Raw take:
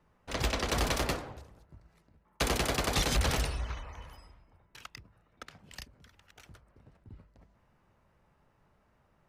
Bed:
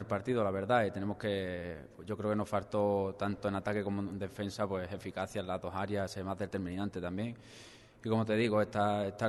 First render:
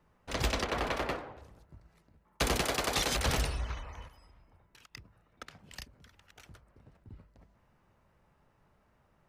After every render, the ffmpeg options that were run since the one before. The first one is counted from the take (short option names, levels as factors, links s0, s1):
-filter_complex "[0:a]asettb=1/sr,asplit=3[s0][s1][s2];[s0]atrim=end=0.644[s3];[s1]atrim=start=0.64:end=1.42,asetpts=PTS-STARTPTS,afade=t=in:d=0.004:c=qsin,afade=t=out:st=0.776:d=0.004:c=qsin,bass=f=250:g=-8,treble=f=4000:g=-15[s4];[s2]atrim=start=1.416[s5];[s3][s4]acrossfade=d=0.004:c1=hsin:c2=qsin[s6];[s6][s5]acrossfade=d=0.004:c1=qsin:c2=hsin,asettb=1/sr,asplit=3[s7][s8][s9];[s7]atrim=end=2.614[s10];[s8]atrim=start=2.61:end=3.26,asetpts=PTS-STARTPTS,afade=t=in:d=0.004:c=qsin,afade=t=out:st=0.646:d=0.004:c=qsin,bass=f=250:g=-8,treble=f=4000:g=0[s11];[s9]atrim=start=3.256[s12];[s10][s11]acrossfade=d=0.004:c1=hsin:c2=qsin[s13];[s13][s12]acrossfade=d=0.004:c1=qsin:c2=hsin,asettb=1/sr,asplit=3[s14][s15][s16];[s14]atrim=end=4.084[s17];[s15]atrim=start=4.08:end=4.95,asetpts=PTS-STARTPTS,afade=t=in:d=0.004:c=qsin,afade=t=out:st=0.866:d=0.004:c=qsin,acompressor=threshold=0.00178:ratio=4:attack=3.2:release=140:knee=1:detection=peak[s18];[s16]atrim=start=4.946[s19];[s17][s18]acrossfade=d=0.004:c1=hsin:c2=qsin[s20];[s20][s19]acrossfade=d=0.004:c1=qsin:c2=hsin"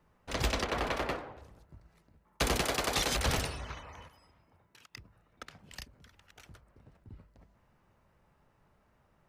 -filter_complex "[0:a]asettb=1/sr,asplit=3[s0][s1][s2];[s0]atrim=end=3.394[s3];[s1]atrim=start=3.39:end=4.98,asetpts=PTS-STARTPTS,afade=t=in:d=0.004:c=qsin,afade=t=out:st=1.586:d=0.004:c=qsin,highpass=94[s4];[s2]atrim=start=4.976[s5];[s3][s4]acrossfade=d=0.004:c1=hsin:c2=qsin[s6];[s6][s5]acrossfade=d=0.004:c1=qsin:c2=hsin"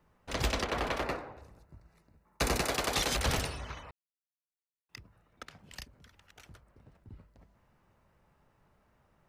-filter_complex "[0:a]asettb=1/sr,asplit=3[s0][s1][s2];[s0]atrim=end=1.034[s3];[s1]atrim=start=1.03:end=2.7,asetpts=PTS-STARTPTS,afade=t=in:d=0.004:c=qsin,afade=t=out:st=1.666:d=0.004:c=qsin,bandreject=f=3200:w=5.6[s4];[s2]atrim=start=2.696[s5];[s3][s4]acrossfade=d=0.004:c1=hsin:c2=qsin[s6];[s6][s5]acrossfade=d=0.004:c1=qsin:c2=hsin,asplit=3[s7][s8][s9];[s7]atrim=end=3.91,asetpts=PTS-STARTPTS,afade=t=out:st=3.906:d=0.004:c=hsin[s10];[s8]atrim=start=3.91:end=4.89,asetpts=PTS-STARTPTS,volume=0[s11];[s9]atrim=start=4.89,asetpts=PTS-STARTPTS,afade=t=in:d=0.004:c=hsin[s12];[s10][s11][s12]concat=n=3:v=0:a=1"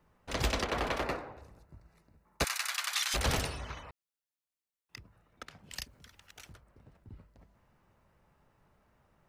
-filter_complex "[0:a]asettb=1/sr,asplit=3[s0][s1][s2];[s0]atrim=end=2.444[s3];[s1]atrim=start=2.44:end=3.14,asetpts=PTS-STARTPTS,afade=t=in:d=0.004:c=qsin,afade=t=out:st=0.696:d=0.004:c=qsin,highpass=f=1200:w=0.5412,highpass=f=1200:w=1.3066[s4];[s2]atrim=start=3.136[s5];[s3][s4]acrossfade=d=0.004:c1=hsin:c2=qsin[s6];[s6][s5]acrossfade=d=0.004:c1=qsin:c2=hsin,asettb=1/sr,asplit=3[s7][s8][s9];[s7]atrim=end=5.704[s10];[s8]atrim=start=5.7:end=6.53,asetpts=PTS-STARTPTS,afade=t=in:d=0.004:c=qsin,afade=t=out:st=0.826:d=0.004:c=qsin,highshelf=f=2500:g=7.5[s11];[s9]atrim=start=6.526[s12];[s10][s11]acrossfade=d=0.004:c1=hsin:c2=qsin[s13];[s13][s12]acrossfade=d=0.004:c1=qsin:c2=hsin"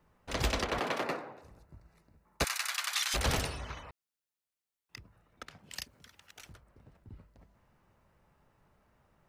-filter_complex "[0:a]asettb=1/sr,asplit=3[s0][s1][s2];[s0]atrim=end=0.794[s3];[s1]atrim=start=0.79:end=1.44,asetpts=PTS-STARTPTS,afade=t=in:d=0.004:c=qsin,afade=t=out:st=0.646:d=0.004:c=qsin,highpass=f=140:w=0.5412,highpass=f=140:w=1.3066[s4];[s2]atrim=start=1.436[s5];[s3][s4]acrossfade=d=0.004:c1=hsin:c2=qsin[s6];[s6][s5]acrossfade=d=0.004:c1=qsin:c2=hsin,asettb=1/sr,asplit=3[s7][s8][s9];[s7]atrim=end=5.584[s10];[s8]atrim=start=5.58:end=6.42,asetpts=PTS-STARTPTS,afade=t=in:d=0.004:c=qsin,afade=t=out:st=0.836:d=0.004:c=qsin,highpass=f=120:p=1[s11];[s9]atrim=start=6.416[s12];[s10][s11]acrossfade=d=0.004:c1=hsin:c2=qsin[s13];[s13][s12]acrossfade=d=0.004:c1=qsin:c2=hsin"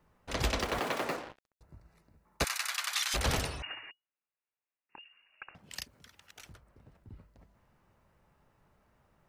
-filter_complex "[0:a]asettb=1/sr,asplit=3[s0][s1][s2];[s0]atrim=end=0.604[s3];[s1]atrim=start=0.6:end=1.61,asetpts=PTS-STARTPTS,afade=t=in:d=0.004:c=qsin,afade=t=out:st=1.006:d=0.004:c=qsin,acrusher=bits=6:mix=0:aa=0.5[s4];[s2]atrim=start=1.606[s5];[s3][s4]acrossfade=d=0.004:c1=hsin:c2=qsin[s6];[s6][s5]acrossfade=d=0.004:c1=qsin:c2=hsin,asettb=1/sr,asplit=3[s7][s8][s9];[s7]atrim=end=3.624[s10];[s8]atrim=start=3.62:end=5.55,asetpts=PTS-STARTPTS,afade=t=in:d=0.004:c=qsin,afade=t=out:st=1.926:d=0.004:c=qsin,lowpass=f=2500:t=q:w=0.5098,lowpass=f=2500:t=q:w=0.6013,lowpass=f=2500:t=q:w=0.9,lowpass=f=2500:t=q:w=2.563,afreqshift=-2900[s11];[s9]atrim=start=5.546[s12];[s10][s11]acrossfade=d=0.004:c1=hsin:c2=qsin[s13];[s13][s12]acrossfade=d=0.004:c1=qsin:c2=hsin"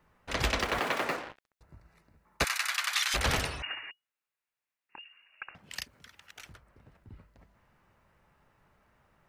-af "equalizer=f=1900:t=o:w=1.9:g=5.5"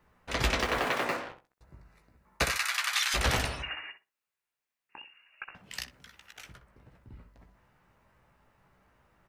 -filter_complex "[0:a]asplit=2[s0][s1];[s1]adelay=16,volume=0.398[s2];[s0][s2]amix=inputs=2:normalize=0,asplit=2[s3][s4];[s4]adelay=62,lowpass=f=1300:p=1,volume=0.398,asplit=2[s5][s6];[s6]adelay=62,lowpass=f=1300:p=1,volume=0.24,asplit=2[s7][s8];[s8]adelay=62,lowpass=f=1300:p=1,volume=0.24[s9];[s3][s5][s7][s9]amix=inputs=4:normalize=0"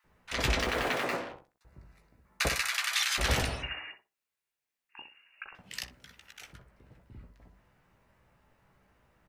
-filter_complex "[0:a]acrossover=split=1100[s0][s1];[s0]adelay=40[s2];[s2][s1]amix=inputs=2:normalize=0"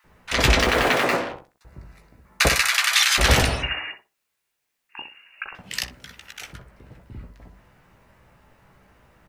-af "volume=3.55"